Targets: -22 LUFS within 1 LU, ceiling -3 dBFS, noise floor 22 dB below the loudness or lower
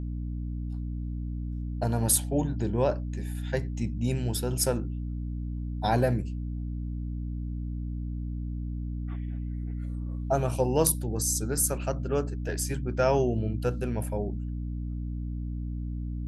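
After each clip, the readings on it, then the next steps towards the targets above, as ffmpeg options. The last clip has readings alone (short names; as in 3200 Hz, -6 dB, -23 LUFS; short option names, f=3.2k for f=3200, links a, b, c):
hum 60 Hz; harmonics up to 300 Hz; hum level -30 dBFS; loudness -30.0 LUFS; peak -7.5 dBFS; loudness target -22.0 LUFS
-> -af "bandreject=f=60:t=h:w=6,bandreject=f=120:t=h:w=6,bandreject=f=180:t=h:w=6,bandreject=f=240:t=h:w=6,bandreject=f=300:t=h:w=6"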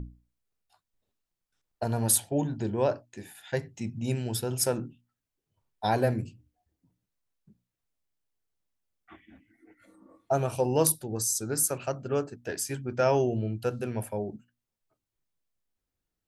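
hum none; loudness -29.0 LUFS; peak -8.5 dBFS; loudness target -22.0 LUFS
-> -af "volume=7dB,alimiter=limit=-3dB:level=0:latency=1"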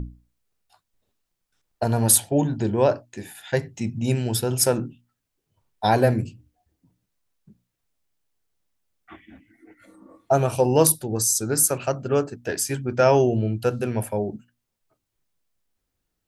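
loudness -22.0 LUFS; peak -3.0 dBFS; noise floor -80 dBFS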